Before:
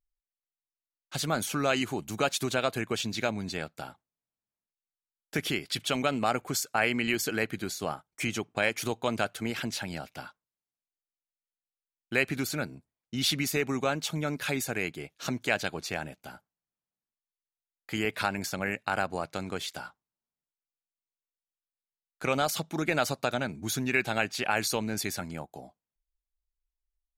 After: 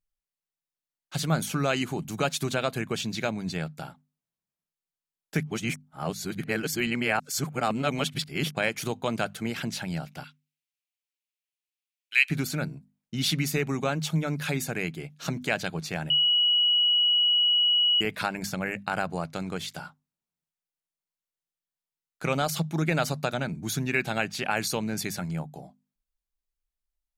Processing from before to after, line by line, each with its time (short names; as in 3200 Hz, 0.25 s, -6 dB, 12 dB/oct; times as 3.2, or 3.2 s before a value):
5.43–8.51 reverse
10.24–12.3 resonant high-pass 2500 Hz, resonance Q 2.7
16.1–18.01 bleep 2920 Hz -19 dBFS
whole clip: bell 160 Hz +12 dB 0.47 oct; notches 50/100/150/200/250 Hz